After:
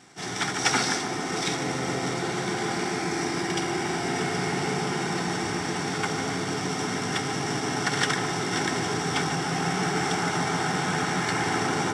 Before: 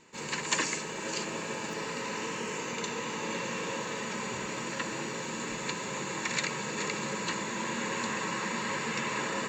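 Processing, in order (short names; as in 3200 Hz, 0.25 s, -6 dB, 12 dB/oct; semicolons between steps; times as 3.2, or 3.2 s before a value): CVSD 64 kbps; HPF 100 Hz; bell 9800 Hz +8.5 dB 0.23 oct; wide varispeed 0.795×; on a send: darkening echo 0.145 s, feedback 83%, low-pass 1000 Hz, level -4 dB; on the sum: gain +5.5 dB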